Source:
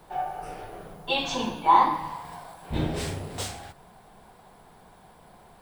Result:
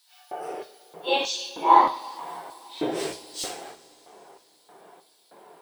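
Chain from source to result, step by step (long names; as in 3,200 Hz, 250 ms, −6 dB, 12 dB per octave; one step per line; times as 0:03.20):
random phases in long frames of 100 ms
auto-filter high-pass square 1.6 Hz 390–4,400 Hz
coupled-rooms reverb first 0.33 s, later 3.6 s, from −19 dB, DRR 7 dB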